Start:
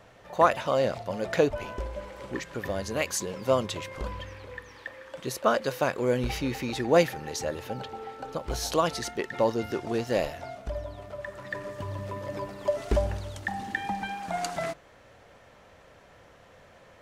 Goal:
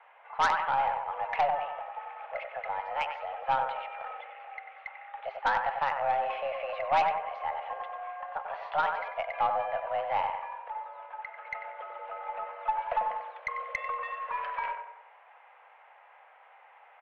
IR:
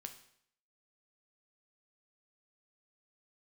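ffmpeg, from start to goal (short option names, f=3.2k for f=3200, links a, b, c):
-filter_complex "[0:a]highpass=f=250:t=q:w=0.5412,highpass=f=250:t=q:w=1.307,lowpass=f=2.5k:t=q:w=0.5176,lowpass=f=2.5k:t=q:w=0.7071,lowpass=f=2.5k:t=q:w=1.932,afreqshift=280,asplit=2[a][b];[b]adelay=94,lowpass=f=1.7k:p=1,volume=-5dB,asplit=2[c][d];[d]adelay=94,lowpass=f=1.7k:p=1,volume=0.54,asplit=2[e][f];[f]adelay=94,lowpass=f=1.7k:p=1,volume=0.54,asplit=2[g][h];[h]adelay=94,lowpass=f=1.7k:p=1,volume=0.54,asplit=2[i][j];[j]adelay=94,lowpass=f=1.7k:p=1,volume=0.54,asplit=2[k][l];[l]adelay=94,lowpass=f=1.7k:p=1,volume=0.54,asplit=2[m][n];[n]adelay=94,lowpass=f=1.7k:p=1,volume=0.54[o];[a][c][e][g][i][k][m][o]amix=inputs=8:normalize=0,aeval=exprs='0.447*(cos(1*acos(clip(val(0)/0.447,-1,1)))-cos(1*PI/2))+0.0891*(cos(5*acos(clip(val(0)/0.447,-1,1)))-cos(5*PI/2))+0.0158*(cos(8*acos(clip(val(0)/0.447,-1,1)))-cos(8*PI/2))':c=same,volume=-8dB"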